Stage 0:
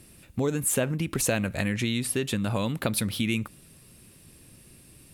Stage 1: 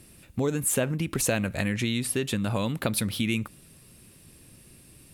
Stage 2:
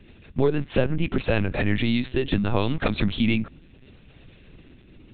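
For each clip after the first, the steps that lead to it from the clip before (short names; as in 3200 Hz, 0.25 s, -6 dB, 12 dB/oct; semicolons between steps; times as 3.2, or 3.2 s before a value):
nothing audible
rotary speaker horn 6.3 Hz, later 0.65 Hz, at 1.44; LPC vocoder at 8 kHz pitch kept; gain +7 dB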